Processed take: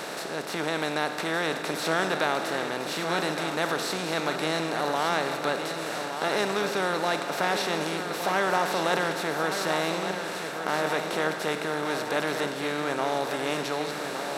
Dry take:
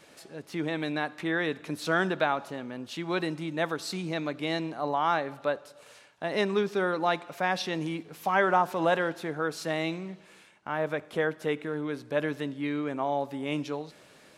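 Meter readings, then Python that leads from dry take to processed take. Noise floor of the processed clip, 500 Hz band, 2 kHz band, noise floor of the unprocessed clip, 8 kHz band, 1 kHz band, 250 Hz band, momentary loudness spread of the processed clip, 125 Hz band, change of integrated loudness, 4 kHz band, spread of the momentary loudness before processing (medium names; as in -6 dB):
-34 dBFS, +2.0 dB, +4.0 dB, -56 dBFS, +11.0 dB, +2.5 dB, 0.0 dB, 5 LU, -0.5 dB, +2.5 dB, +7.5 dB, 11 LU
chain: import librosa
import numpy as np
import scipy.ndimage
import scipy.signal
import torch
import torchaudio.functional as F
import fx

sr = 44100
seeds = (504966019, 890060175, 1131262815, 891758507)

p1 = fx.bin_compress(x, sr, power=0.4)
p2 = fx.high_shelf(p1, sr, hz=4300.0, db=9.5)
p3 = p2 + fx.echo_feedback(p2, sr, ms=1166, feedback_pct=53, wet_db=-8.0, dry=0)
y = F.gain(torch.from_numpy(p3), -6.0).numpy()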